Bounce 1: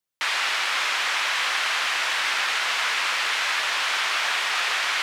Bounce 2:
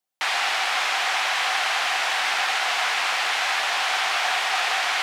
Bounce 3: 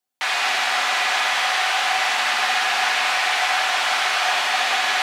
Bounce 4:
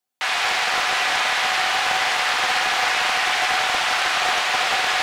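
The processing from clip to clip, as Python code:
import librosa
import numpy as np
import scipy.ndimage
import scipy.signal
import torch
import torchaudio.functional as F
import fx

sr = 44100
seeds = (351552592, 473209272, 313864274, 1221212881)

y1 = scipy.signal.sosfilt(scipy.signal.butter(4, 120.0, 'highpass', fs=sr, output='sos'), x)
y1 = fx.peak_eq(y1, sr, hz=750.0, db=13.0, octaves=0.3)
y2 = fx.rev_fdn(y1, sr, rt60_s=2.1, lf_ratio=1.5, hf_ratio=0.75, size_ms=24.0, drr_db=0.0)
y3 = fx.doppler_dist(y2, sr, depth_ms=0.27)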